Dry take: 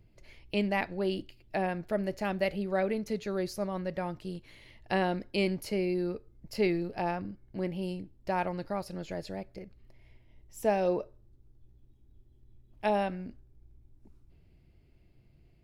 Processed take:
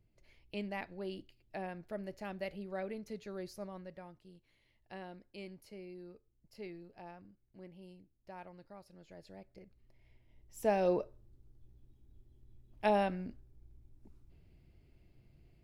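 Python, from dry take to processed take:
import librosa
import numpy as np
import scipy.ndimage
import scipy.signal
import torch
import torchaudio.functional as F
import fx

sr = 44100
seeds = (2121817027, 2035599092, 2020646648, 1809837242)

y = fx.gain(x, sr, db=fx.line((3.66, -11.0), (4.2, -19.0), (8.96, -19.0), (9.55, -11.5), (10.97, -1.5)))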